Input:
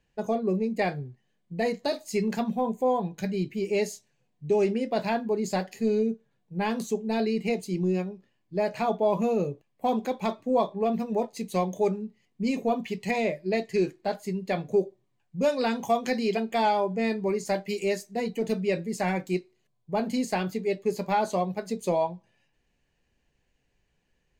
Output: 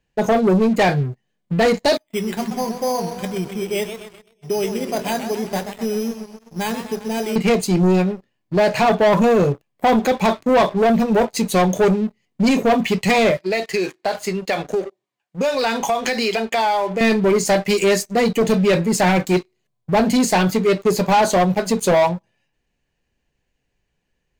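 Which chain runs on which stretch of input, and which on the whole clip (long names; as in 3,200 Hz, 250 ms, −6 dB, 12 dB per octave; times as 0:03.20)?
0:01.97–0:07.36: first-order pre-emphasis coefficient 0.8 + bad sample-rate conversion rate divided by 8×, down filtered, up hold + feedback echo with a swinging delay time 127 ms, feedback 60%, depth 129 cents, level −9.5 dB
0:13.37–0:17.01: meter weighting curve A + downward compressor 4 to 1, threshold −32 dBFS
whole clip: dynamic equaliser 300 Hz, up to −3 dB, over −38 dBFS, Q 0.75; leveller curve on the samples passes 3; level +6 dB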